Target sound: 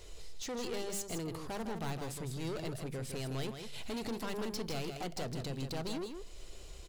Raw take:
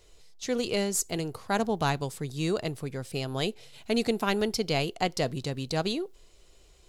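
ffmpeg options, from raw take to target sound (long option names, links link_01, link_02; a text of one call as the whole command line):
ffmpeg -i in.wav -filter_complex "[0:a]asplit=2[link_01][link_02];[link_02]acompressor=threshold=-35dB:ratio=6,volume=-3dB[link_03];[link_01][link_03]amix=inputs=2:normalize=0,aeval=exprs='(tanh(39.8*val(0)+0.2)-tanh(0.2))/39.8':channel_layout=same,alimiter=level_in=13dB:limit=-24dB:level=0:latency=1:release=355,volume=-13dB,lowshelf=frequency=150:gain=4,bandreject=frequency=50:width_type=h:width=6,bandreject=frequency=100:width_type=h:width=6,bandreject=frequency=150:width_type=h:width=6,bandreject=frequency=200:width_type=h:width=6,asplit=2[link_04][link_05];[link_05]aecho=0:1:159:0.447[link_06];[link_04][link_06]amix=inputs=2:normalize=0,volume=1.5dB" out.wav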